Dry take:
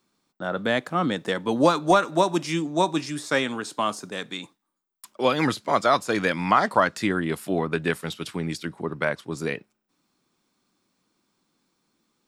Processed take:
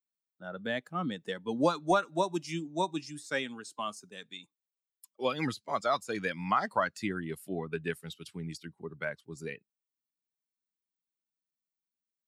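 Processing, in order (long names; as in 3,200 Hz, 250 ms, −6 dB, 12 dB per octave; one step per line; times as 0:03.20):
spectral dynamics exaggerated over time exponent 1.5
level −6.5 dB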